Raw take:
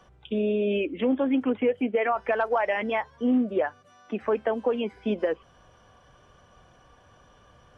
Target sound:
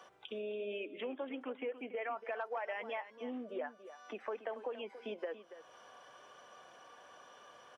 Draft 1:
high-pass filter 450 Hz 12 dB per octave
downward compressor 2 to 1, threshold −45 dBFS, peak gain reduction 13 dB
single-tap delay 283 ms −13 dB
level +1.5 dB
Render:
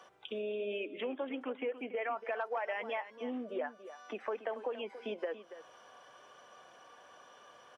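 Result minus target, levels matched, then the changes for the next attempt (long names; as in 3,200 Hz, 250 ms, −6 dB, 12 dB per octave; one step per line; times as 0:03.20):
downward compressor: peak gain reduction −3 dB
change: downward compressor 2 to 1, threshold −51.5 dBFS, peak gain reduction 16 dB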